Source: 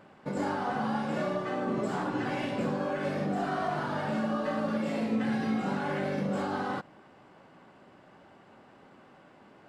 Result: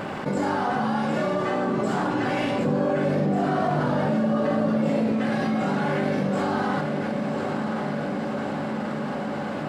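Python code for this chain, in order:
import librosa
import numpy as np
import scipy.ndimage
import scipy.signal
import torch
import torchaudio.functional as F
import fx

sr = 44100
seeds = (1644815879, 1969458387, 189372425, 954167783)

y = fx.graphic_eq_10(x, sr, hz=(125, 250, 500), db=(9, 4, 6), at=(2.65, 5.12))
y = fx.echo_diffused(y, sr, ms=1051, feedback_pct=60, wet_db=-12.0)
y = fx.env_flatten(y, sr, amount_pct=70)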